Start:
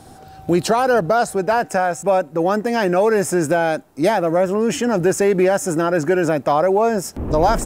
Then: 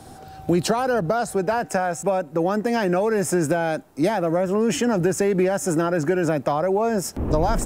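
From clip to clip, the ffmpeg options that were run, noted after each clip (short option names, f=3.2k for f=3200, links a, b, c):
-filter_complex "[0:a]acrossover=split=220[a][b];[b]acompressor=threshold=-19dB:ratio=6[c];[a][c]amix=inputs=2:normalize=0"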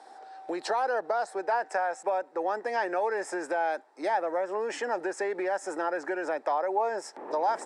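-af "highpass=f=390:w=0.5412,highpass=f=390:w=1.3066,equalizer=f=870:t=q:w=4:g=9,equalizer=f=1.8k:t=q:w=4:g=7,equalizer=f=2.9k:t=q:w=4:g=-6,equalizer=f=6.6k:t=q:w=4:g=-8,lowpass=f=7.7k:w=0.5412,lowpass=f=7.7k:w=1.3066,volume=-8dB"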